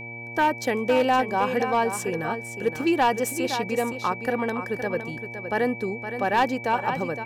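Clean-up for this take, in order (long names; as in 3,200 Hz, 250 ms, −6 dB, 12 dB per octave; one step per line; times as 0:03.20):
clipped peaks rebuilt −14.5 dBFS
hum removal 117.6 Hz, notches 8
notch filter 2,300 Hz, Q 30
echo removal 515 ms −9.5 dB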